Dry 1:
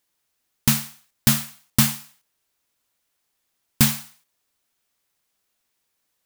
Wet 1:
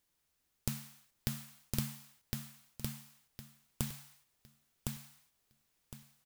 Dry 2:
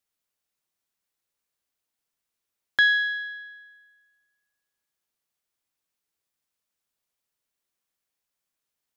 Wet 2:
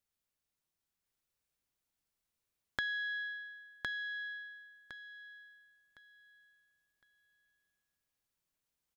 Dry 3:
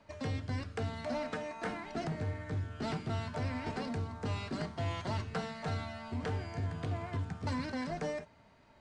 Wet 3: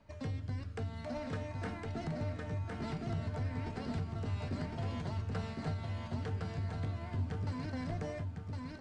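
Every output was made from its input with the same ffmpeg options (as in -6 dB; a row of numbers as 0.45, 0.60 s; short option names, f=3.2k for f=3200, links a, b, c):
-af "lowshelf=f=180:g=10.5,acompressor=threshold=-29dB:ratio=8,aecho=1:1:1060|2120|3180|4240:0.708|0.184|0.0479|0.0124,volume=-5.5dB"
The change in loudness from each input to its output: -21.0, -18.0, -1.5 LU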